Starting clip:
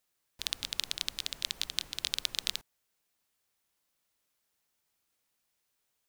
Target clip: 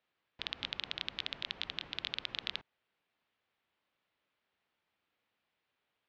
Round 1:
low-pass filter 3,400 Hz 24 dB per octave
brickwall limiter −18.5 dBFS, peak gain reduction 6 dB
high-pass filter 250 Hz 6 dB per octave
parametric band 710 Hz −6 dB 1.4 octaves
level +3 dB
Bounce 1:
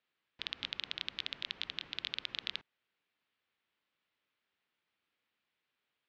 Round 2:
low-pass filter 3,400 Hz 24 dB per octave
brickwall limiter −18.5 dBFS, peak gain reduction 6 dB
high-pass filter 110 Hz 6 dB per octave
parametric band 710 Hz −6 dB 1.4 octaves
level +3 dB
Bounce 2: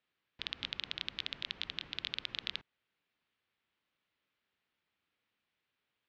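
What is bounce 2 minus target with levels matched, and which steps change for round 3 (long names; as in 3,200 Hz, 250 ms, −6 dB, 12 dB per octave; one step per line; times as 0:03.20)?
1,000 Hz band −3.0 dB
remove: parametric band 710 Hz −6 dB 1.4 octaves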